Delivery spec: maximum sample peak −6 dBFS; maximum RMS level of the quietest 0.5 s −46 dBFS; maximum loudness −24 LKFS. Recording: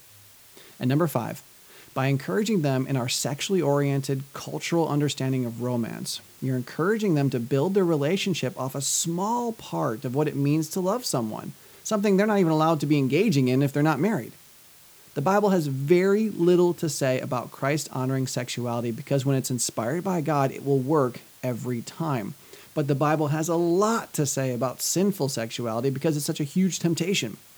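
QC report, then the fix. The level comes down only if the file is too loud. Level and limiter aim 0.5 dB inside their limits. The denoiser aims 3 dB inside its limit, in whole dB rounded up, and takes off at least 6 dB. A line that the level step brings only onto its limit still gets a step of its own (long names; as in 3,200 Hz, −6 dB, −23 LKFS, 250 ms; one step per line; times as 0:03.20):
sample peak −7.0 dBFS: in spec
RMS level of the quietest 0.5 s −52 dBFS: in spec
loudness −25.0 LKFS: in spec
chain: no processing needed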